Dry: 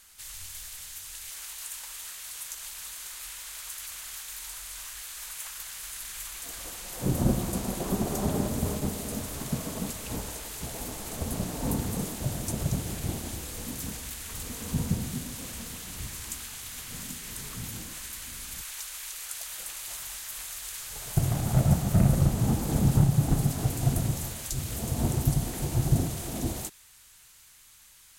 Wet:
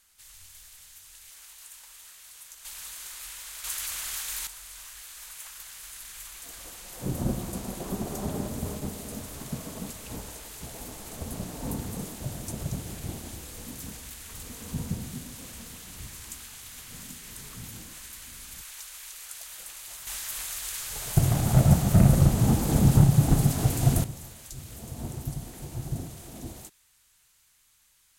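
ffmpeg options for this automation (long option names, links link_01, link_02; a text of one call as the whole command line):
ffmpeg -i in.wav -af "asetnsamples=nb_out_samples=441:pad=0,asendcmd='2.65 volume volume -0.5dB;3.64 volume volume 6dB;4.47 volume volume -4dB;20.07 volume volume 3.5dB;24.04 volume volume -9dB',volume=-8.5dB" out.wav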